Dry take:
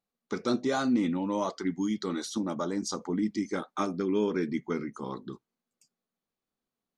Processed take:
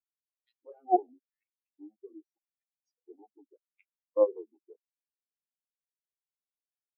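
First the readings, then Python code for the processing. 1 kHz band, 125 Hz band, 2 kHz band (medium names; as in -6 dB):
+1.0 dB, under -40 dB, under -35 dB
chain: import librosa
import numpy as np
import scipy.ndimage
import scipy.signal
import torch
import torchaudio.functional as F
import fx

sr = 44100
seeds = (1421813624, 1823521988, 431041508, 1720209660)

y = fx.cheby_harmonics(x, sr, harmonics=(3, 4), levels_db=(-6, -29), full_scale_db=-16.0)
y = fx.filter_lfo_highpass(y, sr, shape='square', hz=0.84, low_hz=390.0, high_hz=2400.0, q=1.8)
y = fx.spectral_expand(y, sr, expansion=4.0)
y = y * 10.0 ** (4.5 / 20.0)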